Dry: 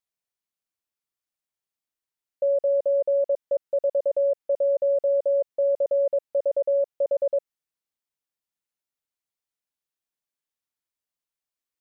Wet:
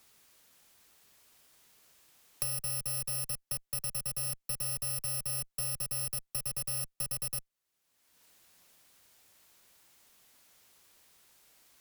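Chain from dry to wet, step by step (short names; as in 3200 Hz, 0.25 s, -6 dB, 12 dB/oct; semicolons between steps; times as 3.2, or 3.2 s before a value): FFT order left unsorted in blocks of 64 samples; tube stage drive 30 dB, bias 0.4; three-band squash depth 100%; gain -1.5 dB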